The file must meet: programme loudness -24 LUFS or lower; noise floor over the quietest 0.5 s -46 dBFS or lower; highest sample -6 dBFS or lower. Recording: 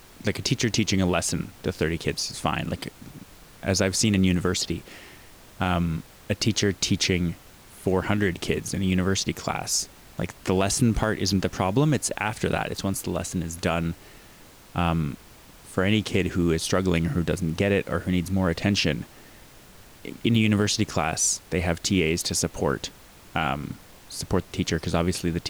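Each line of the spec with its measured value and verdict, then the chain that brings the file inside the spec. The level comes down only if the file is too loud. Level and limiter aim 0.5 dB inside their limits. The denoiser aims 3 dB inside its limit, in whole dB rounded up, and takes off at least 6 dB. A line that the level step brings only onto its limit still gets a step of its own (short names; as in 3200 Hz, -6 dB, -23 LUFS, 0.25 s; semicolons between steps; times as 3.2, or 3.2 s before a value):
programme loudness -25.5 LUFS: OK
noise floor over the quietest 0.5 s -49 dBFS: OK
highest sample -9.5 dBFS: OK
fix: none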